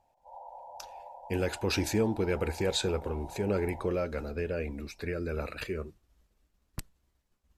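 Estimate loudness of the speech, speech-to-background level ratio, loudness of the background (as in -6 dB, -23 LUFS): -32.5 LUFS, 15.0 dB, -47.5 LUFS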